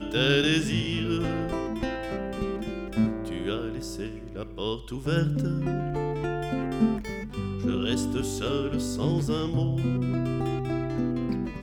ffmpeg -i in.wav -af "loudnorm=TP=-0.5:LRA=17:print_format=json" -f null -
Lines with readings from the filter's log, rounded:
"input_i" : "-28.2",
"input_tp" : "-9.2",
"input_lra" : "2.3",
"input_thresh" : "-38.2",